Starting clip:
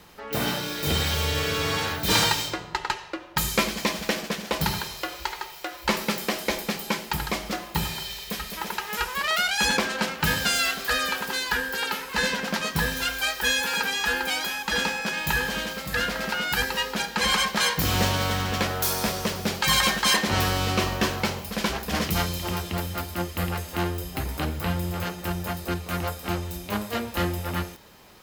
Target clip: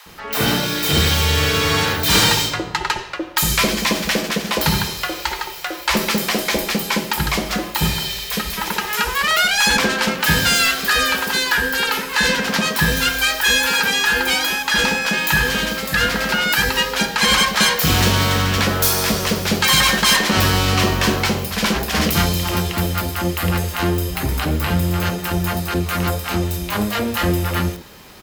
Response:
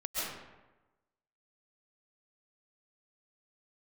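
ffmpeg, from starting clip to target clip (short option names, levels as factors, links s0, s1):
-filter_complex "[0:a]aeval=exprs='0.398*sin(PI/2*2.24*val(0)/0.398)':c=same,acrossover=split=720[s0][s1];[s0]adelay=60[s2];[s2][s1]amix=inputs=2:normalize=0,volume=0.891"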